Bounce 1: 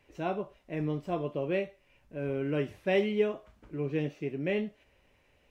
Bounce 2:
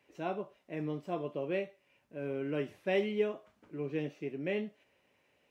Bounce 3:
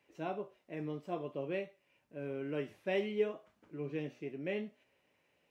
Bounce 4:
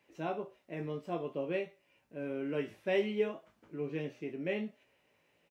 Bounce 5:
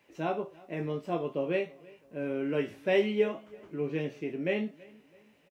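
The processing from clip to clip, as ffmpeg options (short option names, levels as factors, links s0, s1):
-af "highpass=160,volume=0.668"
-af "flanger=delay=5.9:depth=3.1:regen=83:speed=0.56:shape=sinusoidal,volume=1.19"
-filter_complex "[0:a]asplit=2[s0][s1];[s1]adelay=18,volume=0.447[s2];[s0][s2]amix=inputs=2:normalize=0,volume=1.26"
-filter_complex "[0:a]asplit=2[s0][s1];[s1]adelay=329,lowpass=f=3700:p=1,volume=0.0708,asplit=2[s2][s3];[s3]adelay=329,lowpass=f=3700:p=1,volume=0.43,asplit=2[s4][s5];[s5]adelay=329,lowpass=f=3700:p=1,volume=0.43[s6];[s0][s2][s4][s6]amix=inputs=4:normalize=0,volume=1.78"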